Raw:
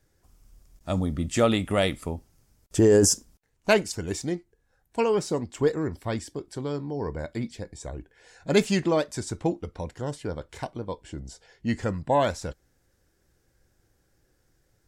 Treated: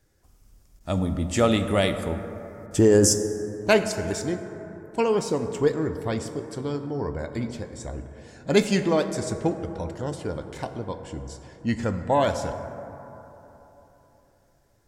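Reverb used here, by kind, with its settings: plate-style reverb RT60 3.5 s, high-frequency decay 0.3×, DRR 8 dB; gain +1 dB

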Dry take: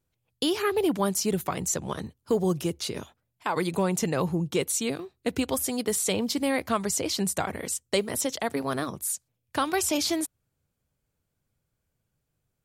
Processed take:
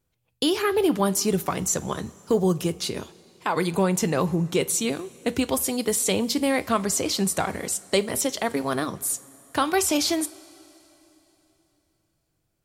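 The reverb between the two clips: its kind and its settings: two-slope reverb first 0.27 s, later 3.4 s, from -18 dB, DRR 12.5 dB; gain +3 dB

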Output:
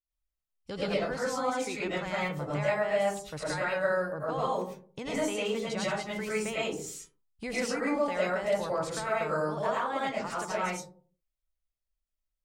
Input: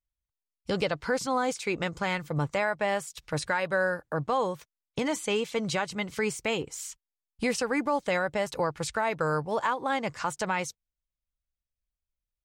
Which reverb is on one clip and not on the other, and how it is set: digital reverb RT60 0.46 s, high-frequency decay 0.35×, pre-delay 65 ms, DRR -7.5 dB; gain -10 dB

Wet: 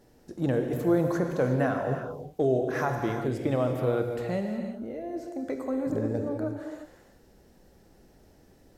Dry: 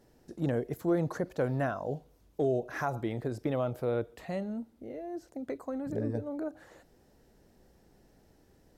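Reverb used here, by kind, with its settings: non-linear reverb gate 0.39 s flat, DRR 3.5 dB; gain +3.5 dB

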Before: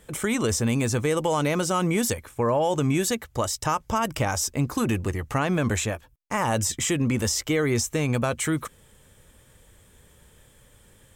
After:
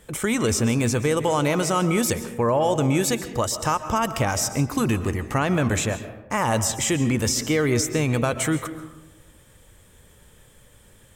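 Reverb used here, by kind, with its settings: digital reverb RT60 1.1 s, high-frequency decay 0.4×, pre-delay 95 ms, DRR 11 dB; gain +2 dB

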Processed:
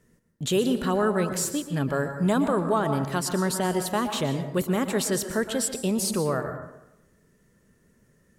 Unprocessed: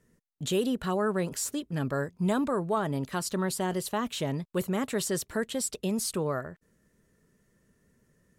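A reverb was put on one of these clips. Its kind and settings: plate-style reverb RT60 0.86 s, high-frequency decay 0.5×, pre-delay 0.105 s, DRR 7.5 dB; gain +4 dB

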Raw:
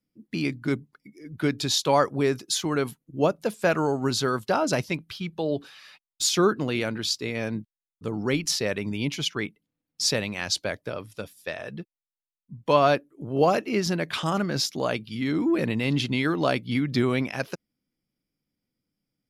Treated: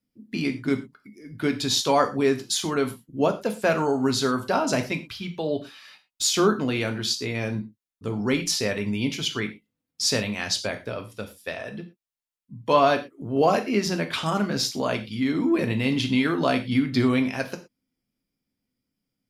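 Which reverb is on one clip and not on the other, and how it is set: non-linear reverb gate 0.14 s falling, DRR 5 dB

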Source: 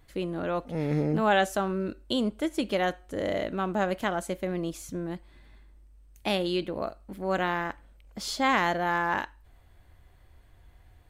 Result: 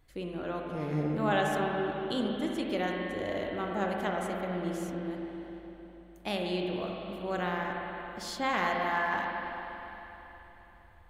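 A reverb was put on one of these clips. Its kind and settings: spring tank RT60 3.7 s, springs 39/50/54 ms, chirp 55 ms, DRR -0.5 dB; gain -6.5 dB

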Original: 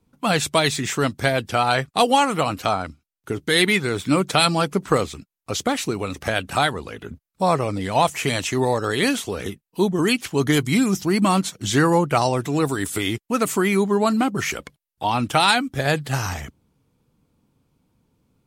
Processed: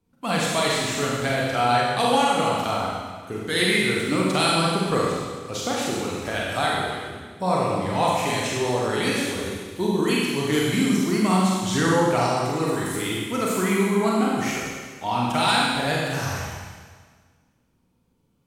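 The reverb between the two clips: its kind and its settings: Schroeder reverb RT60 1.6 s, combs from 33 ms, DRR -4.5 dB; gain -7.5 dB

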